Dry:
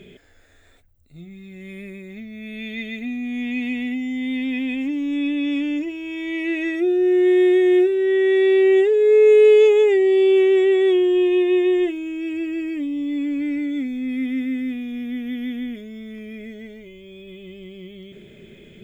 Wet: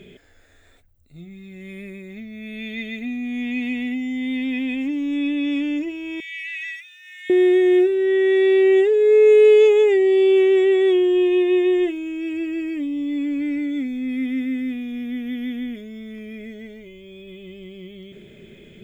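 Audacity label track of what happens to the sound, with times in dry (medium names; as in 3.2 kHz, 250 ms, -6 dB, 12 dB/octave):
6.200000	7.300000	steep high-pass 1.8 kHz 48 dB/octave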